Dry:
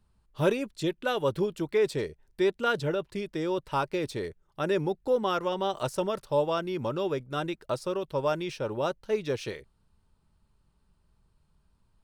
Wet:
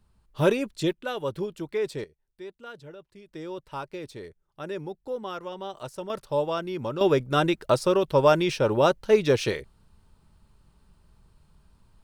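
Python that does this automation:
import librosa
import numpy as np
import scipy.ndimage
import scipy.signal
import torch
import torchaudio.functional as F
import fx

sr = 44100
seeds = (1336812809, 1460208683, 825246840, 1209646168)

y = fx.gain(x, sr, db=fx.steps((0.0, 3.5), (0.92, -3.0), (2.04, -15.5), (3.29, -7.0), (6.1, 0.0), (7.01, 9.0)))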